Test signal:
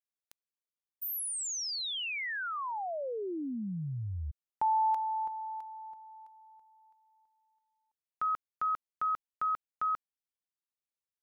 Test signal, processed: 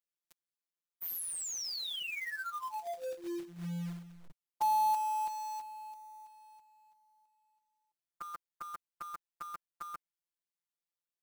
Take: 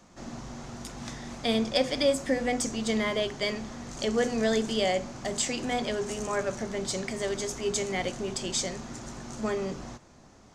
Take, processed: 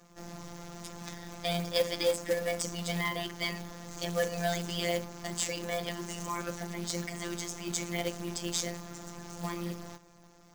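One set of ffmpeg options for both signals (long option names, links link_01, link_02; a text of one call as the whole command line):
ffmpeg -i in.wav -af "afftfilt=real='hypot(re,im)*cos(PI*b)':imag='0':win_size=1024:overlap=0.75,acrusher=bits=3:mode=log:mix=0:aa=0.000001" out.wav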